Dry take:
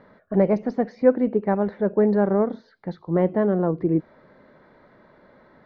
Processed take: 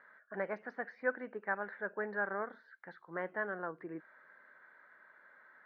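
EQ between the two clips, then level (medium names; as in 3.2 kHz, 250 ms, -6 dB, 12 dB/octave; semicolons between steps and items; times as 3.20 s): band-pass filter 1.6 kHz, Q 4.6; +3.5 dB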